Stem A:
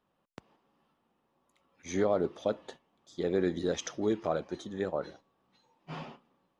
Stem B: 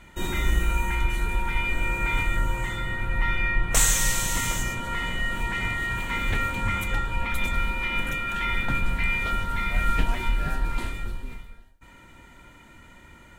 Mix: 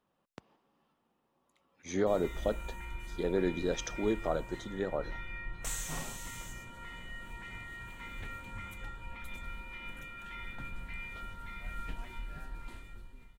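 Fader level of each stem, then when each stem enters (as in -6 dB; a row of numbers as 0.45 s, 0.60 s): -1.5 dB, -17.5 dB; 0.00 s, 1.90 s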